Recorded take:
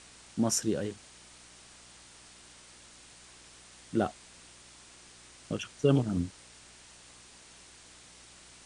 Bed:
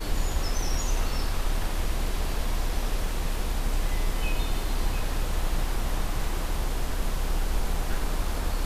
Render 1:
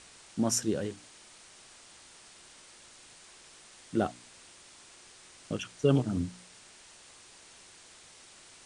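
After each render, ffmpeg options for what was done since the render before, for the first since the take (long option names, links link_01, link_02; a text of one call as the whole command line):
ffmpeg -i in.wav -af "bandreject=frequency=60:width_type=h:width=4,bandreject=frequency=120:width_type=h:width=4,bandreject=frequency=180:width_type=h:width=4,bandreject=frequency=240:width_type=h:width=4,bandreject=frequency=300:width_type=h:width=4" out.wav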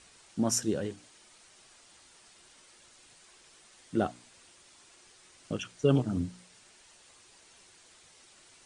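ffmpeg -i in.wav -af "afftdn=noise_reduction=6:noise_floor=-55" out.wav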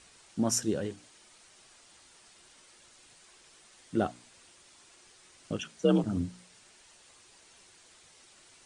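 ffmpeg -i in.wav -filter_complex "[0:a]asettb=1/sr,asplit=3[link_01][link_02][link_03];[link_01]atrim=end=5.614[link_04];[link_02]atrim=start=5.61:end=6.04,asetpts=PTS-STARTPTS,afade=type=in:duration=0.004:curve=qsin,afade=type=out:start_time=0.426:duration=0.004:curve=qsin,afreqshift=46[link_05];[link_03]atrim=start=6.036[link_06];[link_04][link_05]acrossfade=duration=0.004:curve1=hsin:curve2=qsin[link_07];[link_07][link_06]acrossfade=duration=0.004:curve1=qsin:curve2=hsin" out.wav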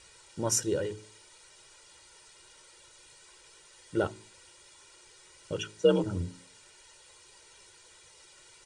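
ffmpeg -i in.wav -af "aecho=1:1:2.1:0.76,bandreject=frequency=53.49:width_type=h:width=4,bandreject=frequency=106.98:width_type=h:width=4,bandreject=frequency=160.47:width_type=h:width=4,bandreject=frequency=213.96:width_type=h:width=4,bandreject=frequency=267.45:width_type=h:width=4,bandreject=frequency=320.94:width_type=h:width=4,bandreject=frequency=374.43:width_type=h:width=4,bandreject=frequency=427.92:width_type=h:width=4" out.wav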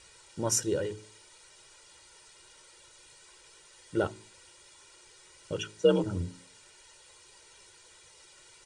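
ffmpeg -i in.wav -af anull out.wav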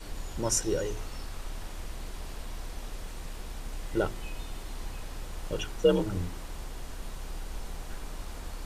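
ffmpeg -i in.wav -i bed.wav -filter_complex "[1:a]volume=-11.5dB[link_01];[0:a][link_01]amix=inputs=2:normalize=0" out.wav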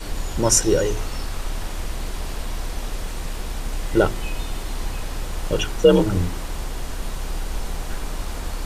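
ffmpeg -i in.wav -af "volume=11dB,alimiter=limit=-3dB:level=0:latency=1" out.wav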